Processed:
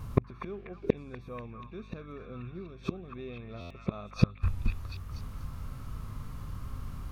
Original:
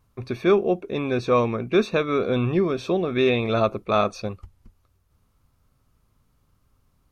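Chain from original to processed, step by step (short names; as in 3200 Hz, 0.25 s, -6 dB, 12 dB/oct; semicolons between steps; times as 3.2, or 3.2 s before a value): bell 1100 Hz +3 dB 0.43 oct; harmonic-percussive split harmonic +7 dB; tone controls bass +7 dB, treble -3 dB; in parallel at +3 dB: compressor 12:1, threshold -21 dBFS, peak gain reduction 16.5 dB; on the sum: flipped gate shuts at -12 dBFS, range -39 dB; hum 50 Hz, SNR 16 dB; on a send: delay with a stepping band-pass 0.243 s, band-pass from 1400 Hz, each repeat 0.7 oct, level -1 dB; on the sum: stuck buffer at 3.6, samples 512, times 8; gain +6 dB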